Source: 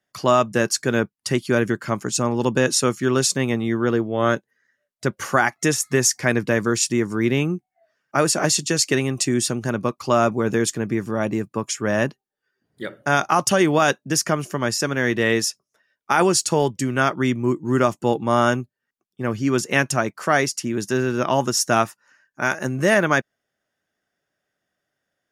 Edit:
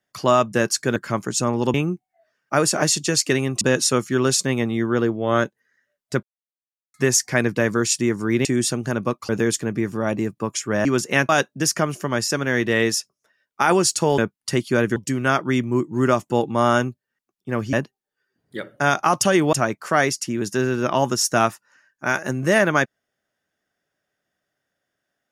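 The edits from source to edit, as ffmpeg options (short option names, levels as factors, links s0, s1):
-filter_complex "[0:a]asplit=14[s0][s1][s2][s3][s4][s5][s6][s7][s8][s9][s10][s11][s12][s13];[s0]atrim=end=0.962[s14];[s1]atrim=start=1.738:end=2.522[s15];[s2]atrim=start=7.358:end=9.232[s16];[s3]atrim=start=2.518:end=5.14,asetpts=PTS-STARTPTS,afade=t=out:st=2.618:d=0.004:c=hsin[s17];[s4]atrim=start=5.14:end=5.85,asetpts=PTS-STARTPTS,volume=0[s18];[s5]atrim=start=5.85:end=7.362,asetpts=PTS-STARTPTS,afade=t=in:d=0.004:c=hsin[s19];[s6]atrim=start=9.228:end=10.072[s20];[s7]atrim=start=10.428:end=11.992[s21];[s8]atrim=start=19.448:end=19.892[s22];[s9]atrim=start=13.788:end=16.682[s23];[s10]atrim=start=0.958:end=1.742[s24];[s11]atrim=start=16.678:end=19.452[s25];[s12]atrim=start=11.988:end=13.792[s26];[s13]atrim=start=19.888[s27];[s14][s15]acrossfade=d=0.004:c1=hsin:c2=hsin[s28];[s28][s16]acrossfade=d=0.004:c1=hsin:c2=hsin[s29];[s17][s18][s19]concat=n=3:v=0:a=1[s30];[s29][s30]acrossfade=d=0.004:c1=hsin:c2=hsin[s31];[s31][s20]acrossfade=d=0.004:c1=hsin:c2=hsin[s32];[s32][s21]acrossfade=d=0.004:c1=hsin:c2=hsin[s33];[s33][s22]acrossfade=d=0.004:c1=hsin:c2=hsin[s34];[s34][s23]acrossfade=d=0.004:c1=hsin:c2=hsin[s35];[s35][s24]acrossfade=d=0.004:c1=hsin:c2=hsin[s36];[s36][s25]acrossfade=d=0.004:c1=hsin:c2=hsin[s37];[s37][s26]acrossfade=d=0.004:c1=hsin:c2=hsin[s38];[s38][s27]acrossfade=d=0.004:c1=hsin:c2=hsin"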